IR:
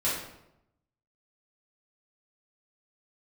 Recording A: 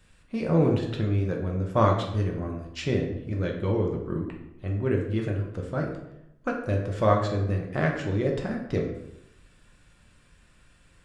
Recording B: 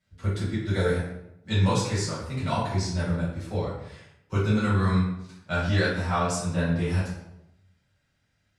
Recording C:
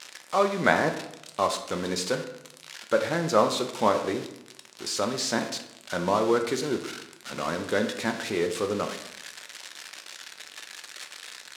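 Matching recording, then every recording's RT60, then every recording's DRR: B; 0.85, 0.85, 0.85 s; -0.5, -10.5, 5.0 dB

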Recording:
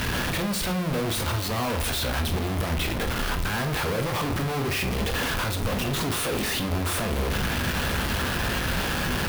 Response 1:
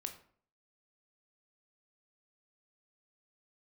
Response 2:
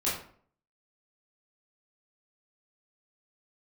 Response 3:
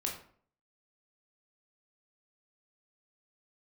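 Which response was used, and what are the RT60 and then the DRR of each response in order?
1; 0.55, 0.55, 0.55 s; 5.5, -9.0, -0.5 dB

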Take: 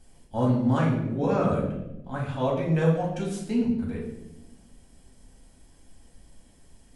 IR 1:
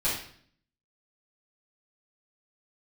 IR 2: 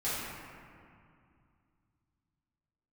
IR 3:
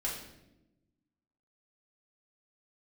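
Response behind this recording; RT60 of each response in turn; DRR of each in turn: 3; 0.55, 2.4, 0.95 s; -10.0, -12.5, -4.5 dB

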